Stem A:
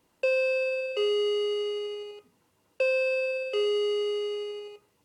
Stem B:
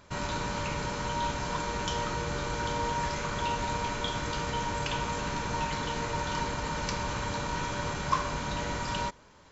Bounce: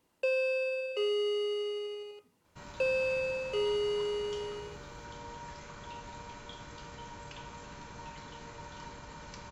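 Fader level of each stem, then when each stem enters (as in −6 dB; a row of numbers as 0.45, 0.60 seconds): −4.5, −14.5 decibels; 0.00, 2.45 seconds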